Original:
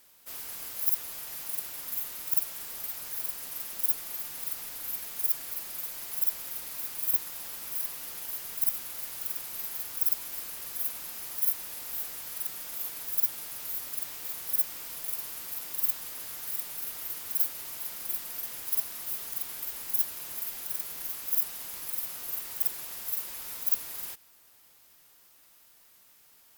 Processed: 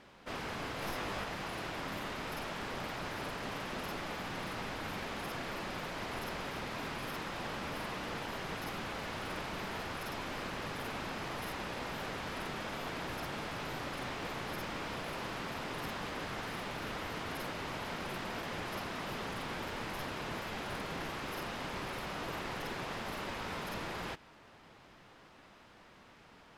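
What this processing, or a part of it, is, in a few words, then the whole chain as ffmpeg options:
phone in a pocket: -filter_complex "[0:a]asettb=1/sr,asplit=3[link_01][link_02][link_03];[link_01]atrim=end=0.804[link_04];[link_02]atrim=start=0.8:end=1.24,asetpts=PTS-STARTPTS,afade=type=in:duration=0.004:curve=qsin,afade=type=out:start_time=0.436:duration=0.004:curve=qsin,asplit=2[link_05][link_06];[link_06]adelay=20,volume=-3dB[link_07];[link_05][link_07]amix=inputs=2:normalize=0,atrim=end_sample=19404[link_08];[link_03]atrim=start=1.236[link_09];[link_04][link_08]acrossfade=duration=0.004:curve1=hsin:curve2=qsin[link_10];[link_10][link_09]acrossfade=duration=0.004:curve1=qsin:curve2=hsin,lowpass=3300,equalizer=frequency=180:width_type=o:width=1.6:gain=4,highshelf=frequency=2100:gain=-10,volume=13.5dB"

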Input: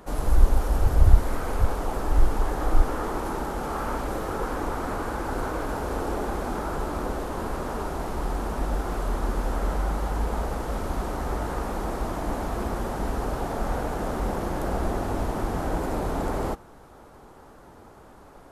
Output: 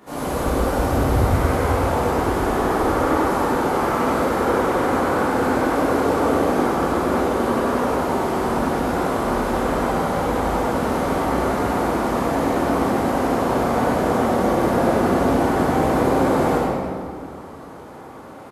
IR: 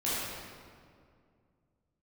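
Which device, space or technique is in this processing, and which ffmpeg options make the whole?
PA in a hall: -filter_complex "[0:a]highpass=130,equalizer=frequency=2200:width_type=o:width=0.59:gain=3,aecho=1:1:98:0.596[link_01];[1:a]atrim=start_sample=2205[link_02];[link_01][link_02]afir=irnorm=-1:irlink=0"

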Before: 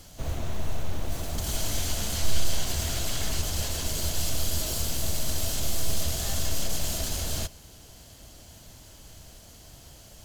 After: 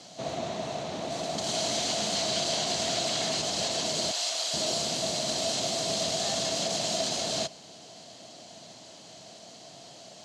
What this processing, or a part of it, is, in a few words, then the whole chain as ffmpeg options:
television speaker: -filter_complex "[0:a]asettb=1/sr,asplit=3[link_01][link_02][link_03];[link_01]atrim=end=4.114[link_04];[link_02]atrim=start=4.11:end=4.54,asetpts=PTS-STARTPTS,afade=type=in:duration=0.004:curve=qsin,afade=type=out:start_time=0.426:duration=0.004:curve=qsin,highpass=820[link_05];[link_03]atrim=start=4.536[link_06];[link_04][link_05]acrossfade=duration=0.004:curve1=hsin:curve2=qsin[link_07];[link_07][link_06]acrossfade=duration=0.004:curve1=qsin:curve2=hsin,highpass=frequency=160:width=0.5412,highpass=frequency=160:width=1.3066,equalizer=frequency=680:width_type=q:width=4:gain=9,equalizer=frequency=1500:width_type=q:width=4:gain=-4,equalizer=frequency=4100:width_type=q:width=4:gain=6,lowpass=frequency=7400:width=0.5412,lowpass=frequency=7400:width=1.3066,volume=2.5dB"

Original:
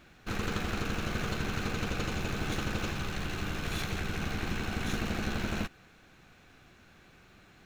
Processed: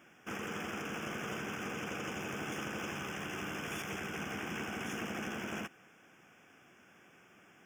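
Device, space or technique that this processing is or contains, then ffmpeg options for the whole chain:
PA system with an anti-feedback notch: -af "highpass=200,asuperstop=centerf=4100:order=8:qfactor=2.6,alimiter=level_in=4.5dB:limit=-24dB:level=0:latency=1:release=49,volume=-4.5dB,volume=-1.5dB"

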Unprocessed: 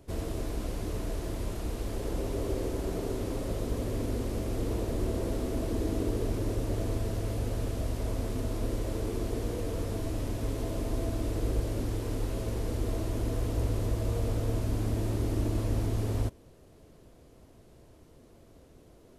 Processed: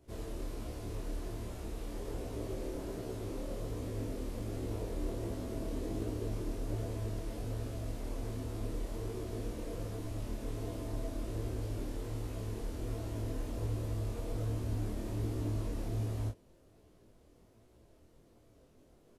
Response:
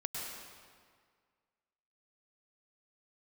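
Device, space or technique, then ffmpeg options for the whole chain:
double-tracked vocal: -filter_complex "[0:a]asplit=2[link_01][link_02];[link_02]adelay=27,volume=-3dB[link_03];[link_01][link_03]amix=inputs=2:normalize=0,flanger=delay=16:depth=7.7:speed=1.3,volume=-6dB"

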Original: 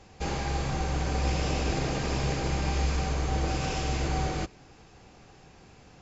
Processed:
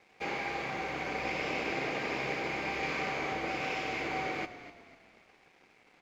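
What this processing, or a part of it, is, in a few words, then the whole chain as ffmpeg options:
pocket radio on a weak battery: -filter_complex "[0:a]asettb=1/sr,asplit=3[link_01][link_02][link_03];[link_01]atrim=end=2.794[link_04];[link_02]atrim=start=2.79:end=3.33,asetpts=PTS-STARTPTS,afade=type=in:duration=0.004:curve=qsin,afade=type=out:start_time=0.536:duration=0.004:curve=qsin,asplit=2[link_05][link_06];[link_06]adelay=36,volume=-2dB[link_07];[link_05][link_07]amix=inputs=2:normalize=0,atrim=end_sample=23814[link_08];[link_03]atrim=start=3.326[link_09];[link_04][link_08]acrossfade=duration=0.004:curve1=hsin:curve2=qsin[link_10];[link_10][link_09]acrossfade=duration=0.004:curve1=qsin:curve2=hsin,highpass=260,lowpass=3600,equalizer=frequency=150:width_type=o:width=1.4:gain=-2.5,aeval=exprs='sgn(val(0))*max(abs(val(0))-0.00106,0)':channel_layout=same,equalizer=frequency=2200:width_type=o:width=0.37:gain=11,asplit=5[link_11][link_12][link_13][link_14][link_15];[link_12]adelay=249,afreqshift=-32,volume=-13.5dB[link_16];[link_13]adelay=498,afreqshift=-64,volume=-21.7dB[link_17];[link_14]adelay=747,afreqshift=-96,volume=-29.9dB[link_18];[link_15]adelay=996,afreqshift=-128,volume=-38dB[link_19];[link_11][link_16][link_17][link_18][link_19]amix=inputs=5:normalize=0,volume=-2dB"

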